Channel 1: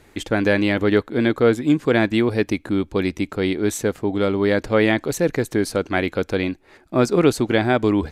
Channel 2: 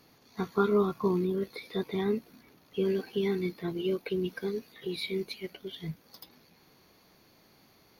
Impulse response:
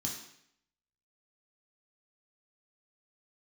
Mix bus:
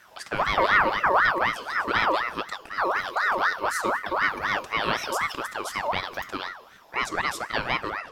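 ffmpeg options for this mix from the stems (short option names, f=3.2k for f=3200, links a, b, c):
-filter_complex "[0:a]highpass=390,volume=-5dB,asplit=2[a][b];[b]volume=-11dB[c];[1:a]equalizer=f=72:t=o:w=2.3:g=15,volume=2.5dB,asplit=2[d][e];[e]volume=-11.5dB[f];[2:a]atrim=start_sample=2205[g];[c][f]amix=inputs=2:normalize=0[h];[h][g]afir=irnorm=-1:irlink=0[i];[a][d][i]amix=inputs=3:normalize=0,aeval=exprs='val(0)*sin(2*PI*1200*n/s+1200*0.4/4*sin(2*PI*4*n/s))':c=same"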